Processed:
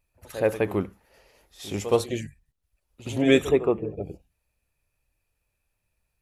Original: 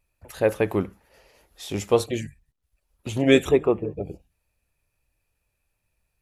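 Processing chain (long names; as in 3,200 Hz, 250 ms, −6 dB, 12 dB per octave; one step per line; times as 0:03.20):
echo ahead of the sound 70 ms −13 dB
level −2 dB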